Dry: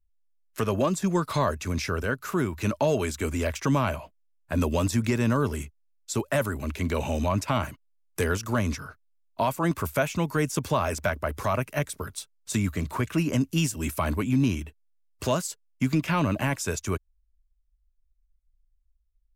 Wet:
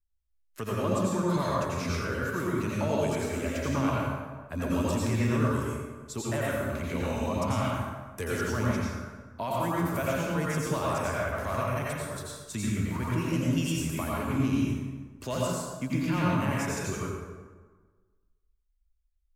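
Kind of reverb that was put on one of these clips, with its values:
dense smooth reverb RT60 1.4 s, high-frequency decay 0.6×, pre-delay 75 ms, DRR −5.5 dB
level −9 dB

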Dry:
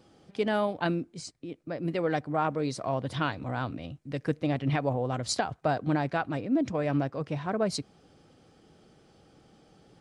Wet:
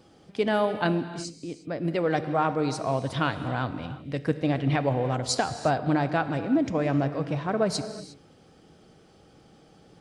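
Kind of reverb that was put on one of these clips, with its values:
reverb whose tail is shaped and stops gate 380 ms flat, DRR 10 dB
level +3 dB

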